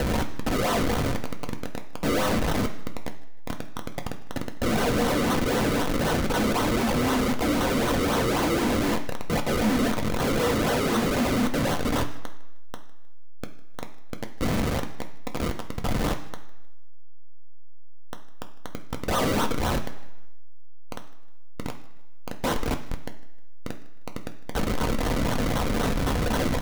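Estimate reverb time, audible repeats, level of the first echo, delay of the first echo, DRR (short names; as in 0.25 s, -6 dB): 1.0 s, 2, -22.0 dB, 0.155 s, 3.5 dB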